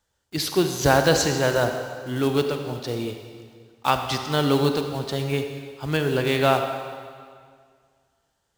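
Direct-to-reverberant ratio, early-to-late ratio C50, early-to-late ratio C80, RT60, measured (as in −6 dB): 5.5 dB, 6.0 dB, 7.0 dB, 2.0 s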